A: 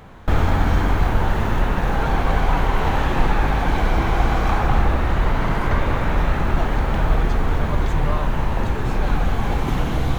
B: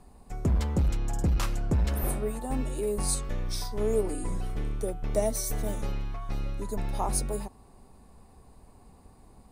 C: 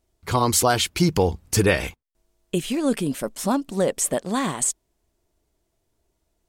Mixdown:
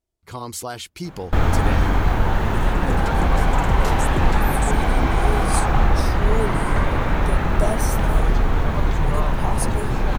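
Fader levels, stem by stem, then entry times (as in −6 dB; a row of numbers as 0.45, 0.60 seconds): 0.0, +1.5, −11.5 decibels; 1.05, 2.45, 0.00 seconds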